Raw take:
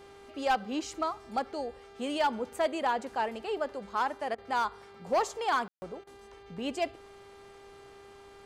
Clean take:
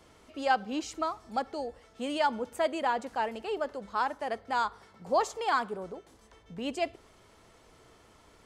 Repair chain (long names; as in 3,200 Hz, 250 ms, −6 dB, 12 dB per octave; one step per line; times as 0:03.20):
clipped peaks rebuilt −21 dBFS
hum removal 398.3 Hz, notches 12
ambience match 0:05.68–0:05.82
repair the gap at 0:04.35/0:06.04, 30 ms